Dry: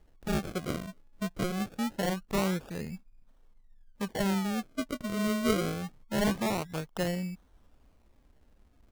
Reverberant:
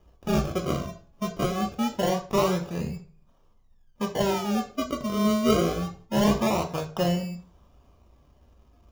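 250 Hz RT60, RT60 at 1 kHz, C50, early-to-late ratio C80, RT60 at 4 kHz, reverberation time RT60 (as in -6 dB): 0.50 s, 0.40 s, 12.0 dB, 15.5 dB, 0.35 s, 0.45 s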